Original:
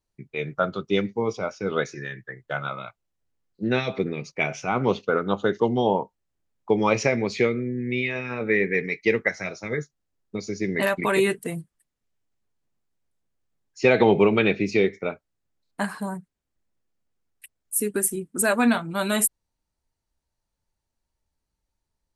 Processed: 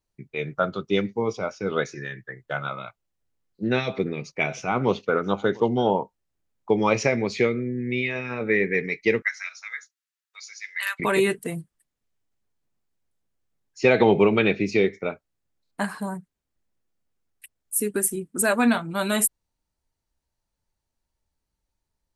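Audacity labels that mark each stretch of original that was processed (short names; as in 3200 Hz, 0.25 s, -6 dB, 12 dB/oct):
3.760000	5.920000	echo 0.693 s -23 dB
9.220000	11.000000	inverse Chebyshev high-pass stop band from 300 Hz, stop band 70 dB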